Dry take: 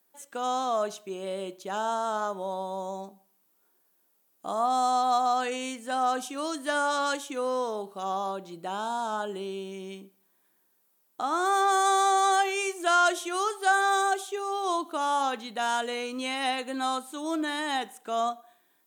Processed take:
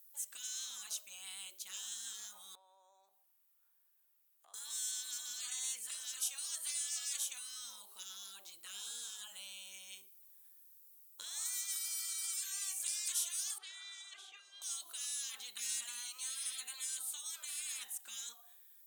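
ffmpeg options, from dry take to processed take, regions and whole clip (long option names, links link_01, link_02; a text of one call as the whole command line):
ffmpeg -i in.wav -filter_complex "[0:a]asettb=1/sr,asplit=3[link_01][link_02][link_03];[link_01]atrim=end=2.554[link_04];[link_02]atrim=start=2.55:end=4.54,asetpts=PTS-STARTPTS,afade=type=in:duration=0.004:curve=qsin,afade=type=out:start_time=1.986:duration=0.004:curve=qsin,acrossover=split=370 3100:gain=0.178 1 0.224[link_05][link_06][link_07];[link_05][link_06][link_07]amix=inputs=3:normalize=0,acompressor=threshold=-54dB:ratio=3:attack=3.2:release=140:knee=1:detection=peak[link_08];[link_03]atrim=start=4.536[link_09];[link_04][link_08]acrossfade=duration=0.004:curve1=hsin:curve2=qsin[link_10];[link_10][link_09]acrossfade=duration=0.004:curve1=qsin:curve2=hsin,asettb=1/sr,asplit=3[link_11][link_12][link_13];[link_11]atrim=end=13.584[link_14];[link_12]atrim=start=13.58:end=14.62,asetpts=PTS-STARTPTS,afade=type=in:duration=0.004:curve=qsin,afade=type=out:start_time=1.036:duration=0.004:curve=qsin,lowpass=2300,lowshelf=frequency=410:gain=3.5[link_15];[link_13]atrim=start=14.616[link_16];[link_14][link_15]acrossfade=duration=0.004:curve1=hsin:curve2=qsin[link_17];[link_17][link_16]acrossfade=duration=0.004:curve1=qsin:curve2=hsin,highpass=frequency=480:poles=1,afftfilt=real='re*lt(hypot(re,im),0.0355)':imag='im*lt(hypot(re,im),0.0355)':win_size=1024:overlap=0.75,aderivative,volume=4.5dB" out.wav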